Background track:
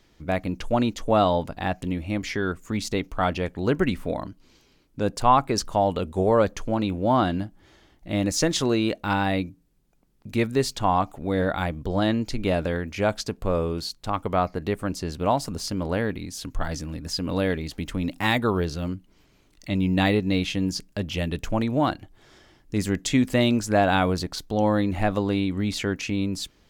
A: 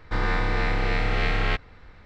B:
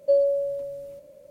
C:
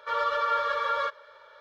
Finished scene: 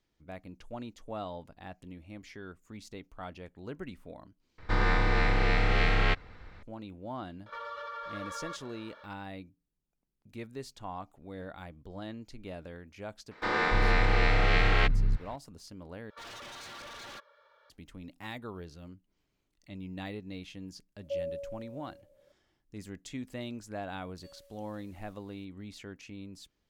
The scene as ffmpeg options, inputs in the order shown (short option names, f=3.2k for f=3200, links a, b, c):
-filter_complex "[1:a]asplit=2[a][b];[3:a]asplit=2[c][d];[2:a]asplit=2[e][f];[0:a]volume=-19dB[g];[c]acompressor=threshold=-37dB:ratio=6:attack=3.2:release=140:knee=1:detection=peak[h];[b]acrossover=split=220[i][j];[i]adelay=290[k];[k][j]amix=inputs=2:normalize=0[l];[d]aeval=exprs='0.0335*(abs(mod(val(0)/0.0335+3,4)-2)-1)':c=same[m];[f]highpass=f=1.4k:w=0.5412,highpass=f=1.4k:w=1.3066[n];[g]asplit=3[o][p][q];[o]atrim=end=4.584[r];[a]atrim=end=2.05,asetpts=PTS-STARTPTS,volume=-1.5dB[s];[p]atrim=start=6.626:end=16.104[t];[m]atrim=end=1.6,asetpts=PTS-STARTPTS,volume=-11.5dB[u];[q]atrim=start=17.696[v];[h]atrim=end=1.6,asetpts=PTS-STARTPTS,volume=-1.5dB,afade=t=in:d=0.004:c=hsin,afade=t=out:st=1.596:d=0.004:c=hsin,adelay=328986S[w];[l]atrim=end=2.05,asetpts=PTS-STARTPTS,afade=t=in:d=0.004:c=hsin,afade=t=out:st=2.046:d=0.004:c=hsin,adelay=13310[x];[e]atrim=end=1.3,asetpts=PTS-STARTPTS,volume=-15dB,afade=t=in:d=0.004:c=hsin,afade=t=out:st=1.296:d=0.004:c=hsin,adelay=21020[y];[n]atrim=end=1.3,asetpts=PTS-STARTPTS,volume=-6.5dB,afade=t=in:d=0.004:c=hsin,afade=t=out:st=1.296:d=0.004:c=hsin,adelay=24150[z];[r][s]acrossfade=d=0.004:c1=hsin:c2=hsin[aa];[aa][t]acrossfade=d=0.004:c1=hsin:c2=hsin[ab];[ab][u]acrossfade=d=0.004:c1=hsin:c2=hsin[ac];[ac][v]acrossfade=d=0.004:c1=hsin:c2=hsin[ad];[ad][w][x][y][z]amix=inputs=5:normalize=0"